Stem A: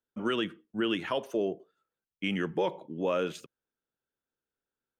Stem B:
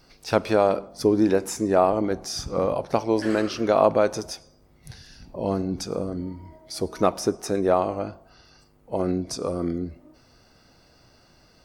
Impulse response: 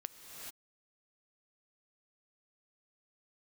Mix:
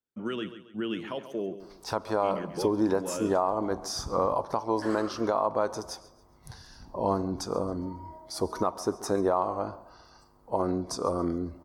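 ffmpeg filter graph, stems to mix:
-filter_complex "[0:a]equalizer=f=150:w=0.43:g=6,volume=-6.5dB,asplit=2[a][b];[b]volume=-12dB[c];[1:a]equalizer=f=160:t=o:w=0.67:g=-3,equalizer=f=1k:t=o:w=0.67:g=12,equalizer=f=2.5k:t=o:w=0.67:g=-9,adelay=1600,volume=-2.5dB,asplit=2[d][e];[e]volume=-21.5dB[f];[c][f]amix=inputs=2:normalize=0,aecho=0:1:137|274|411|548|685:1|0.37|0.137|0.0507|0.0187[g];[a][d][g]amix=inputs=3:normalize=0,alimiter=limit=-14dB:level=0:latency=1:release=424"

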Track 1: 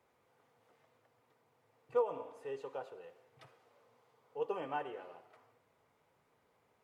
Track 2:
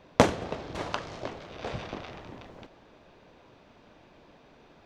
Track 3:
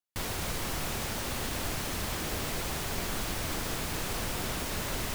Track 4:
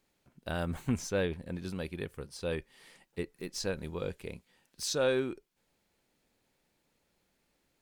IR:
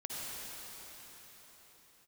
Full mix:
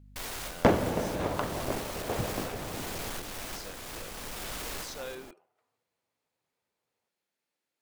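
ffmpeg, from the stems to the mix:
-filter_complex "[0:a]adelay=250,volume=-15dB[a];[1:a]lowpass=f=1.1k:p=1,asoftclip=type=tanh:threshold=-17.5dB,adelay=450,volume=2.5dB,asplit=2[b][c];[c]volume=-7.5dB[d];[2:a]volume=34.5dB,asoftclip=hard,volume=-34.5dB,equalizer=f=120:w=0.56:g=-12,aeval=exprs='val(0)+0.00224*(sin(2*PI*50*n/s)+sin(2*PI*2*50*n/s)/2+sin(2*PI*3*50*n/s)/3+sin(2*PI*4*50*n/s)/4+sin(2*PI*5*50*n/s)/5)':c=same,volume=0dB,asplit=2[e][f];[f]volume=-16.5dB[g];[3:a]highpass=f=550:p=1,volume=-9.5dB,asplit=2[h][i];[i]apad=whole_len=227041[j];[e][j]sidechaincompress=threshold=-50dB:ratio=8:attack=34:release=599[k];[4:a]atrim=start_sample=2205[l];[d][g]amix=inputs=2:normalize=0[m];[m][l]afir=irnorm=-1:irlink=0[n];[a][b][k][h][n]amix=inputs=5:normalize=0"

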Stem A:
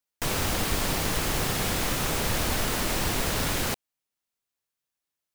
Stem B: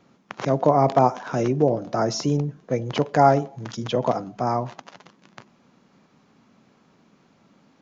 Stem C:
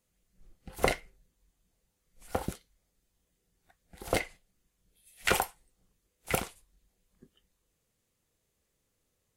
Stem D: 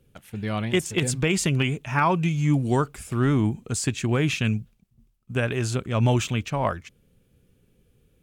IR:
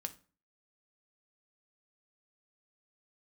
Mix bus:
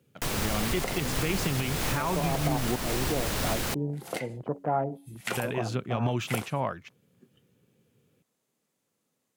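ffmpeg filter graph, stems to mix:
-filter_complex "[0:a]acrossover=split=210[a][b];[b]acompressor=threshold=-25dB:ratio=6[c];[a][c]amix=inputs=2:normalize=0,volume=-1dB[d];[1:a]afwtdn=0.0501,lowpass=1.9k,bandreject=f=93.24:t=h:w=4,bandreject=f=186.48:t=h:w=4,bandreject=f=279.72:t=h:w=4,bandreject=f=372.96:t=h:w=4,adelay=1500,volume=-9dB[e];[2:a]highpass=f=140:w=0.5412,highpass=f=140:w=1.3066,volume=-0.5dB[f];[3:a]highpass=f=110:w=0.5412,highpass=f=110:w=1.3066,equalizer=f=8.3k:t=o:w=0.74:g=-12.5,volume=-2.5dB,asplit=3[g][h][i];[g]atrim=end=2.76,asetpts=PTS-STARTPTS,afade=t=out:st=2.756:d=0.004:c=hsin[j];[h]atrim=start=2.76:end=5.37,asetpts=PTS-STARTPTS,volume=0[k];[i]atrim=start=5.37,asetpts=PTS-STARTPTS,afade=t=in:d=0.004:c=hsin[l];[j][k][l]concat=n=3:v=0:a=1[m];[d][e][f][m]amix=inputs=4:normalize=0,alimiter=limit=-17dB:level=0:latency=1:release=222"

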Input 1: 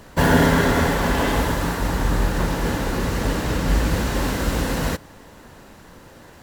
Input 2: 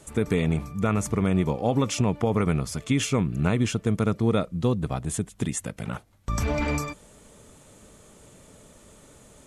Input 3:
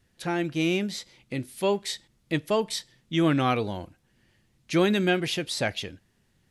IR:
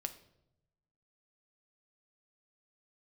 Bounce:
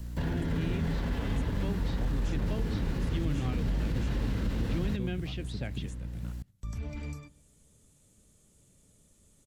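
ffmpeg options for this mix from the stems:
-filter_complex "[0:a]acrossover=split=5000[a][b];[b]acompressor=threshold=-45dB:ratio=4:attack=1:release=60[c];[a][c]amix=inputs=2:normalize=0,aeval=exprs='val(0)+0.0178*(sin(2*PI*60*n/s)+sin(2*PI*2*60*n/s)/2+sin(2*PI*3*60*n/s)/3+sin(2*PI*4*60*n/s)/4+sin(2*PI*5*60*n/s)/5)':c=same,alimiter=limit=-15.5dB:level=0:latency=1:release=29,volume=-0.5dB[d];[1:a]adelay=350,volume=-10dB,asplit=2[e][f];[f]volume=-7.5dB[g];[2:a]lowpass=3.9k,volume=-1.5dB[h];[3:a]atrim=start_sample=2205[i];[g][i]afir=irnorm=-1:irlink=0[j];[d][e][h][j]amix=inputs=4:normalize=0,equalizer=f=970:w=0.32:g=-15,acrossover=split=230|3900[k][l][m];[k]acompressor=threshold=-27dB:ratio=4[n];[l]acompressor=threshold=-36dB:ratio=4[o];[m]acompressor=threshold=-60dB:ratio=4[p];[n][o][p]amix=inputs=3:normalize=0"

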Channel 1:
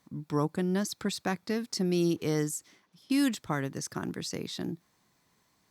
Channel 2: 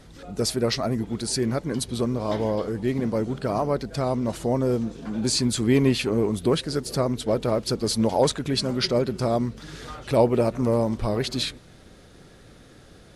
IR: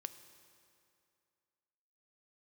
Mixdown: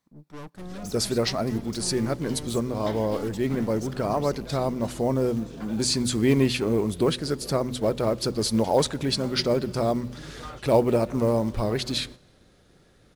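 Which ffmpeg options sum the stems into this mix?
-filter_complex "[0:a]aeval=exprs='(tanh(70.8*val(0)+0.45)-tanh(0.45))/70.8':c=same,volume=-2.5dB,asplit=2[a][b];[b]volume=-8.5dB[c];[1:a]bandreject=f=124.2:t=h:w=4,bandreject=f=248.4:t=h:w=4,acrusher=bits=8:mode=log:mix=0:aa=0.000001,adelay=550,volume=-3dB,asplit=2[d][e];[e]volume=-6.5dB[f];[2:a]atrim=start_sample=2205[g];[c][f]amix=inputs=2:normalize=0[h];[h][g]afir=irnorm=-1:irlink=0[i];[a][d][i]amix=inputs=3:normalize=0,agate=range=-8dB:threshold=-41dB:ratio=16:detection=peak"

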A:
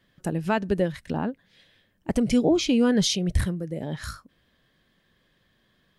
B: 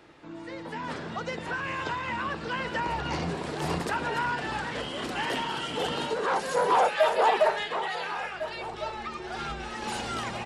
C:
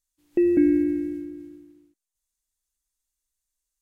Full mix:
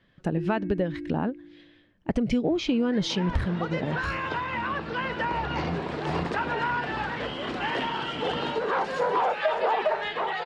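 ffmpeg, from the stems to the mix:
-filter_complex "[0:a]volume=2dB[a];[1:a]adelay=2450,volume=2dB[b];[2:a]acompressor=threshold=-25dB:ratio=6,volume=-6.5dB[c];[a][b][c]amix=inputs=3:normalize=0,lowpass=3.5k,acompressor=threshold=-21dB:ratio=6"

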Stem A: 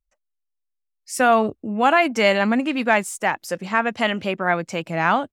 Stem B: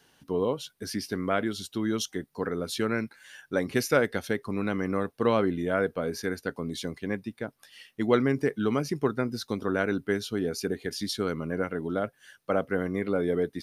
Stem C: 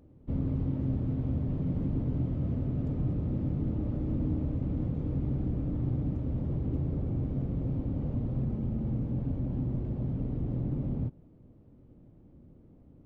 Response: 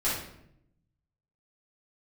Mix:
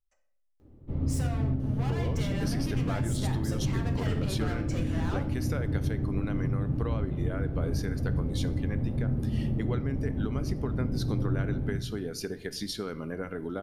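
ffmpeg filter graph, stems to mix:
-filter_complex "[0:a]acompressor=threshold=-24dB:ratio=6,volume=30.5dB,asoftclip=hard,volume=-30.5dB,volume=-7.5dB,asplit=2[a][b];[b]volume=-10.5dB[c];[1:a]acompressor=threshold=-31dB:ratio=6,adelay=1600,volume=-0.5dB,asplit=2[d][e];[e]volume=-21dB[f];[2:a]adelay=600,volume=-5.5dB,asplit=2[g][h];[h]volume=-4.5dB[i];[3:a]atrim=start_sample=2205[j];[c][f][i]amix=inputs=3:normalize=0[k];[k][j]afir=irnorm=-1:irlink=0[l];[a][d][g][l]amix=inputs=4:normalize=0,alimiter=limit=-19dB:level=0:latency=1:release=333"

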